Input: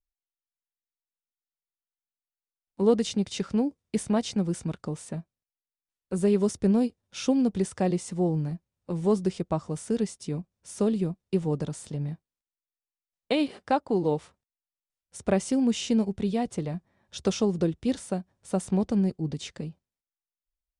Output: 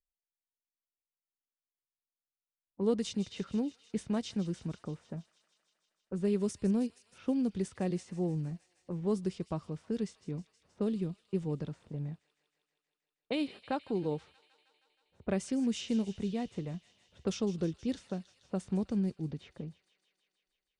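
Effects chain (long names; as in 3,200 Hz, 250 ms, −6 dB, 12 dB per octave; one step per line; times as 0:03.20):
low-pass that shuts in the quiet parts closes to 730 Hz, open at −20 dBFS
dynamic equaliser 760 Hz, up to −5 dB, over −40 dBFS, Q 1.1
delay with a high-pass on its return 158 ms, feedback 74%, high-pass 2,100 Hz, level −13 dB
level −6.5 dB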